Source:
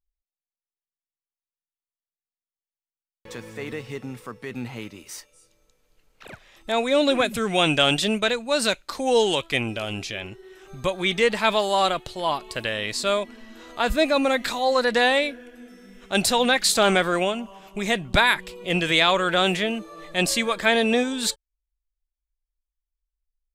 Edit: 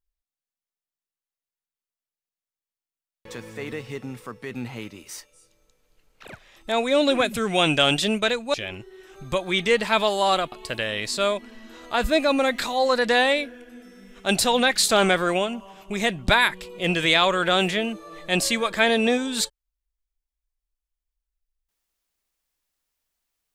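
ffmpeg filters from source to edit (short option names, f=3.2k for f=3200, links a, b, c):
-filter_complex "[0:a]asplit=3[a][b][c];[a]atrim=end=8.542[d];[b]atrim=start=10.058:end=12.042[e];[c]atrim=start=12.378[f];[d][e]acrossfade=d=0.004:c1=hsin:c2=hsin[g];[g][f]acrossfade=d=0.004:c1=hsin:c2=hsin"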